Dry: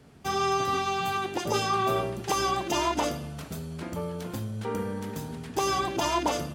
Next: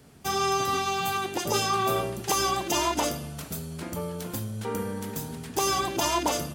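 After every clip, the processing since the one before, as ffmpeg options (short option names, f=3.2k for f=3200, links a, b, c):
-af "highshelf=f=6.6k:g=12"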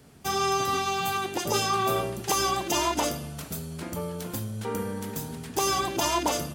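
-af anull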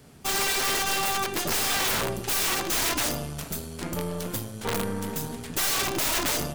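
-af "bandreject=f=53.64:t=h:w=4,bandreject=f=107.28:t=h:w=4,bandreject=f=160.92:t=h:w=4,bandreject=f=214.56:t=h:w=4,bandreject=f=268.2:t=h:w=4,bandreject=f=321.84:t=h:w=4,bandreject=f=375.48:t=h:w=4,bandreject=f=429.12:t=h:w=4,bandreject=f=482.76:t=h:w=4,bandreject=f=536.4:t=h:w=4,bandreject=f=590.04:t=h:w=4,bandreject=f=643.68:t=h:w=4,bandreject=f=697.32:t=h:w=4,bandreject=f=750.96:t=h:w=4,bandreject=f=804.6:t=h:w=4,bandreject=f=858.24:t=h:w=4,bandreject=f=911.88:t=h:w=4,bandreject=f=965.52:t=h:w=4,bandreject=f=1.01916k:t=h:w=4,bandreject=f=1.0728k:t=h:w=4,bandreject=f=1.12644k:t=h:w=4,bandreject=f=1.18008k:t=h:w=4,bandreject=f=1.23372k:t=h:w=4,bandreject=f=1.28736k:t=h:w=4,bandreject=f=1.341k:t=h:w=4,bandreject=f=1.39464k:t=h:w=4,bandreject=f=1.44828k:t=h:w=4,bandreject=f=1.50192k:t=h:w=4,bandreject=f=1.55556k:t=h:w=4,bandreject=f=1.6092k:t=h:w=4,bandreject=f=1.66284k:t=h:w=4,bandreject=f=1.71648k:t=h:w=4,bandreject=f=1.77012k:t=h:w=4,bandreject=f=1.82376k:t=h:w=4,bandreject=f=1.8774k:t=h:w=4,bandreject=f=1.93104k:t=h:w=4,aeval=exprs='(mod(14.1*val(0)+1,2)-1)/14.1':c=same,aeval=exprs='0.075*(cos(1*acos(clip(val(0)/0.075,-1,1)))-cos(1*PI/2))+0.0075*(cos(6*acos(clip(val(0)/0.075,-1,1)))-cos(6*PI/2))':c=same,volume=2.5dB"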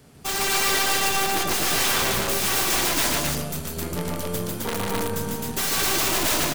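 -af "aecho=1:1:148.7|262.4:0.794|0.891"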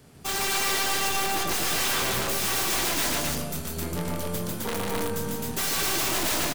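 -filter_complex "[0:a]asoftclip=type=tanh:threshold=-19dB,asplit=2[a][b];[b]adelay=24,volume=-11dB[c];[a][c]amix=inputs=2:normalize=0,volume=-1.5dB"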